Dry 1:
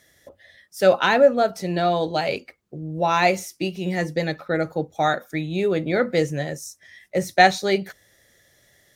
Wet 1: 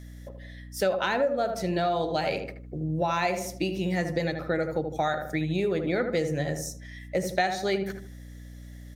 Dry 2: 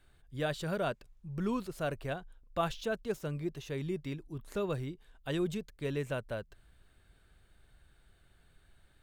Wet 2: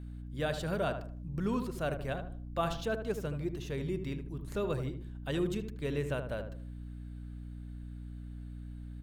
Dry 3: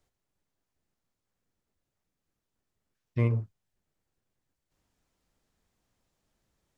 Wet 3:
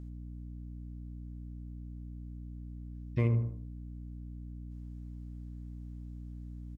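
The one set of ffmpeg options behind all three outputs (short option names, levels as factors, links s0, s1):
-filter_complex "[0:a]asplit=2[s0][s1];[s1]adelay=77,lowpass=f=1400:p=1,volume=0.447,asplit=2[s2][s3];[s3]adelay=77,lowpass=f=1400:p=1,volume=0.37,asplit=2[s4][s5];[s5]adelay=77,lowpass=f=1400:p=1,volume=0.37,asplit=2[s6][s7];[s7]adelay=77,lowpass=f=1400:p=1,volume=0.37[s8];[s0][s2][s4][s6][s8]amix=inputs=5:normalize=0,aeval=exprs='val(0)+0.00794*(sin(2*PI*60*n/s)+sin(2*PI*2*60*n/s)/2+sin(2*PI*3*60*n/s)/3+sin(2*PI*4*60*n/s)/4+sin(2*PI*5*60*n/s)/5)':c=same,acompressor=threshold=0.0631:ratio=4"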